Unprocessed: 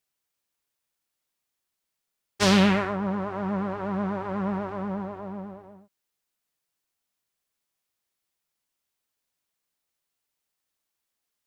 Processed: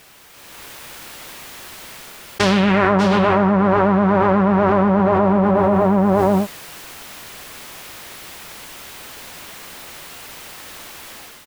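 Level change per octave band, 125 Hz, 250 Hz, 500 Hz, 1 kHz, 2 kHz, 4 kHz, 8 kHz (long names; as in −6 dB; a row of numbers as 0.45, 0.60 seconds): +11.5, +11.0, +15.0, +14.5, +10.0, +5.0, +7.0 decibels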